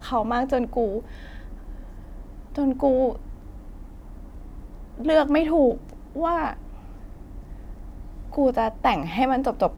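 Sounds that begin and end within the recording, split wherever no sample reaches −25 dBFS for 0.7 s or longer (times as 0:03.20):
0:02.58–0:03.12
0:05.00–0:06.53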